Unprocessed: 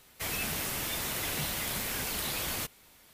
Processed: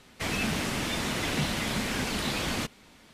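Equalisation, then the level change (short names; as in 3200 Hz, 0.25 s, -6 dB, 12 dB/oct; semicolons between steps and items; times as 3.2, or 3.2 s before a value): air absorption 69 m; bell 230 Hz +7.5 dB 0.93 oct; +5.5 dB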